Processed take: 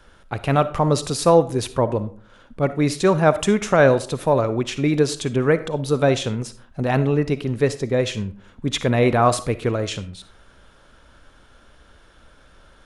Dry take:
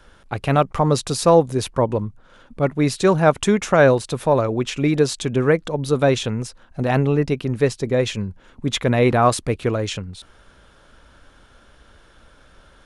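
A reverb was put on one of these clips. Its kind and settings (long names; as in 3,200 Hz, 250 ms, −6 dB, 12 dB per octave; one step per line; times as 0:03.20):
comb and all-pass reverb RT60 0.46 s, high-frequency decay 0.6×, pre-delay 15 ms, DRR 13 dB
level −1 dB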